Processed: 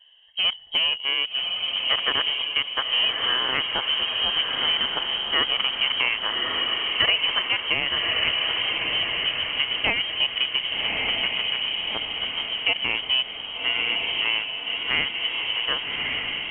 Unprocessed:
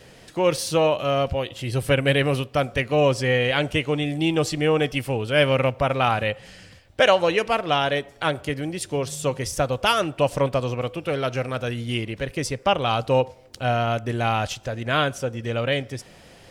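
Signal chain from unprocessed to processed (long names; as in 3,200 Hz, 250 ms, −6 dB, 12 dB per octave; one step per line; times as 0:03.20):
adaptive Wiener filter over 41 samples
high-pass filter 320 Hz 24 dB per octave
feedback delay with all-pass diffusion 1,175 ms, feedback 50%, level −4 dB
voice inversion scrambler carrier 3,500 Hz
dynamic equaliser 2,100 Hz, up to +4 dB, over −34 dBFS, Q 2.5
downward compressor 2 to 1, threshold −23 dBFS, peak gain reduction 7 dB
level +1 dB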